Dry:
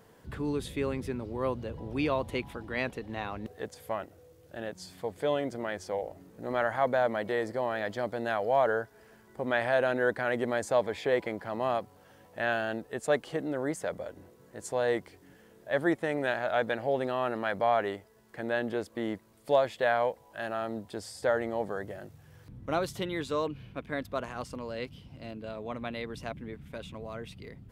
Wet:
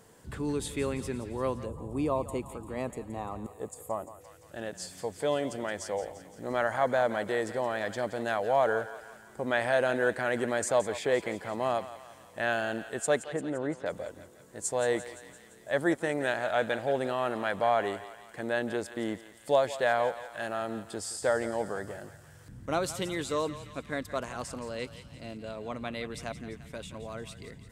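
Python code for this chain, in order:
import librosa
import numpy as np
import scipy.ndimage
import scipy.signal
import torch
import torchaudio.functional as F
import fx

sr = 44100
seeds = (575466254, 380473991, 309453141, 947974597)

y = fx.air_absorb(x, sr, metres=320.0, at=(13.22, 13.86))
y = fx.echo_thinned(y, sr, ms=172, feedback_pct=63, hz=730.0, wet_db=-12.0)
y = fx.spec_box(y, sr, start_s=1.66, length_s=2.55, low_hz=1300.0, high_hz=6600.0, gain_db=-13)
y = fx.peak_eq(y, sr, hz=8000.0, db=11.0, octaves=0.87)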